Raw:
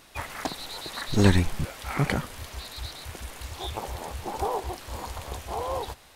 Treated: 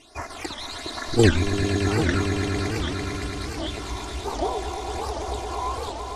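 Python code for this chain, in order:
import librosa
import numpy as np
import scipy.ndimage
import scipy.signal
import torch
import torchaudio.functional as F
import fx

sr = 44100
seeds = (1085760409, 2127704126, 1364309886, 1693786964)

p1 = scipy.signal.sosfilt(scipy.signal.butter(4, 9200.0, 'lowpass', fs=sr, output='sos'), x)
p2 = fx.low_shelf(p1, sr, hz=110.0, db=-8.5)
p3 = p2 + 0.65 * np.pad(p2, (int(2.9 * sr / 1000.0), 0))[:len(p2)]
p4 = fx.level_steps(p3, sr, step_db=20)
p5 = p3 + F.gain(torch.from_numpy(p4), -0.5).numpy()
p6 = fx.phaser_stages(p5, sr, stages=12, low_hz=490.0, high_hz=3400.0, hz=1.2, feedback_pct=25)
p7 = p6 + fx.echo_swell(p6, sr, ms=112, loudest=5, wet_db=-10.0, dry=0)
y = fx.record_warp(p7, sr, rpm=78.0, depth_cents=250.0)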